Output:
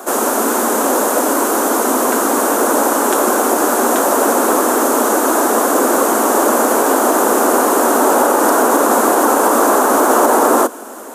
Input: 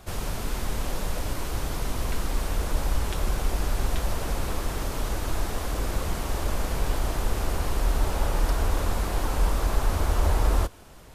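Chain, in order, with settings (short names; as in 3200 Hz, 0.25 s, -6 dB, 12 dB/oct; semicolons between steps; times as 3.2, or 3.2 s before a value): steep high-pass 230 Hz 72 dB/oct; band shelf 3200 Hz -13.5 dB; maximiser +23 dB; gain -1 dB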